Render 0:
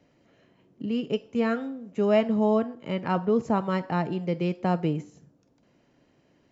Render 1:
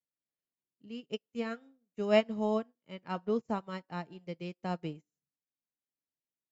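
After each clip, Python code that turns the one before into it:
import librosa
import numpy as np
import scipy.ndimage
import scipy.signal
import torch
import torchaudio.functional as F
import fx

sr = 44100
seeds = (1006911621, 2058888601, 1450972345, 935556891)

y = fx.high_shelf(x, sr, hz=2800.0, db=11.0)
y = fx.upward_expand(y, sr, threshold_db=-44.0, expansion=2.5)
y = y * librosa.db_to_amplitude(-3.0)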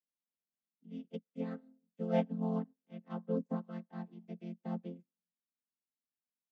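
y = fx.chord_vocoder(x, sr, chord='major triad', root=53)
y = y * librosa.db_to_amplitude(-3.5)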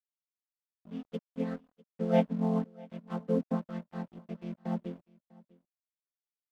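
y = np.sign(x) * np.maximum(np.abs(x) - 10.0 ** (-57.0 / 20.0), 0.0)
y = y + 10.0 ** (-23.5 / 20.0) * np.pad(y, (int(648 * sr / 1000.0), 0))[:len(y)]
y = y * librosa.db_to_amplitude(6.0)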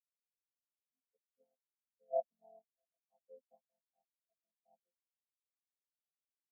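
y = fx.bandpass_q(x, sr, hz=710.0, q=3.9)
y = fx.spectral_expand(y, sr, expansion=2.5)
y = y * librosa.db_to_amplitude(-5.5)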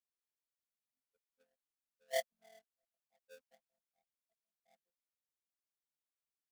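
y = fx.halfwave_hold(x, sr)
y = y * librosa.db_to_amplitude(-4.0)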